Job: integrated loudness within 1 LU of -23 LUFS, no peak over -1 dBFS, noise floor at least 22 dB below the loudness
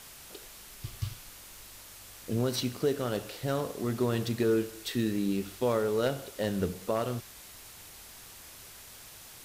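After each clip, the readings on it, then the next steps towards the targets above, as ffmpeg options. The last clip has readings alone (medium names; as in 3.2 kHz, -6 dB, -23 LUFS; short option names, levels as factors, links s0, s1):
noise floor -50 dBFS; noise floor target -54 dBFS; loudness -31.5 LUFS; peak level -17.5 dBFS; loudness target -23.0 LUFS
-> -af "afftdn=nr=6:nf=-50"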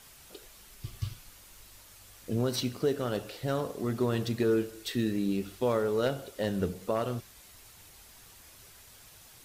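noise floor -54 dBFS; loudness -31.5 LUFS; peak level -18.0 dBFS; loudness target -23.0 LUFS
-> -af "volume=2.66"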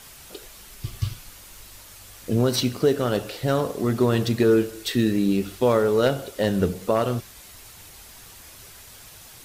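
loudness -23.0 LUFS; peak level -9.5 dBFS; noise floor -46 dBFS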